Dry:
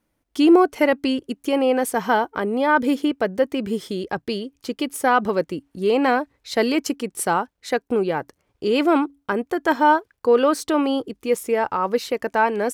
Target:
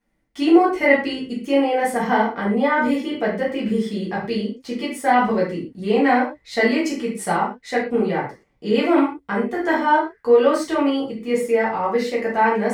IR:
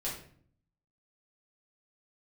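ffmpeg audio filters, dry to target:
-filter_complex "[0:a]equalizer=f=200:t=o:w=0.33:g=9,equalizer=f=800:t=o:w=0.33:g=4,equalizer=f=2000:t=o:w=0.33:g=10,equalizer=f=12500:t=o:w=0.33:g=-9[s0];[1:a]atrim=start_sample=2205,atrim=end_sample=6174[s1];[s0][s1]afir=irnorm=-1:irlink=0,volume=0.631"

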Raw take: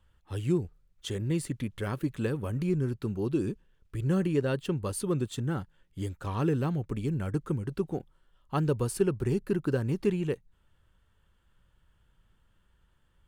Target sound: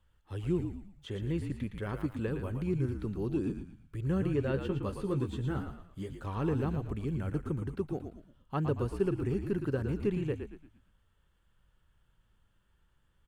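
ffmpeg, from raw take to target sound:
-filter_complex "[0:a]acrossover=split=3200[s0][s1];[s1]acompressor=threshold=0.00141:ratio=4:attack=1:release=60[s2];[s0][s2]amix=inputs=2:normalize=0,asettb=1/sr,asplit=3[s3][s4][s5];[s3]atrim=end=4.524[s6];[s4]atrim=start=4.52:end=6.12,asetpts=PTS-STARTPTS,afade=t=in:d=0.004:c=qsin,afade=t=out:st=1.596:d=0.004:c=qsin,asplit=2[s7][s8];[s8]adelay=15,volume=0.562[s9];[s7][s9]amix=inputs=2:normalize=0,atrim=end_sample=70560[s10];[s5]atrim=start=6.116[s11];[s6][s10]acrossfade=d=0.004:c1=hsin:c2=qsin[s12];[s12][s11]acrossfade=d=0.004:c1=qsin:c2=hsin,asplit=6[s13][s14][s15][s16][s17][s18];[s14]adelay=114,afreqshift=-53,volume=0.447[s19];[s15]adelay=228,afreqshift=-106,volume=0.174[s20];[s16]adelay=342,afreqshift=-159,volume=0.0676[s21];[s17]adelay=456,afreqshift=-212,volume=0.0266[s22];[s18]adelay=570,afreqshift=-265,volume=0.0104[s23];[s13][s19][s20][s21][s22][s23]amix=inputs=6:normalize=0,volume=0.631"

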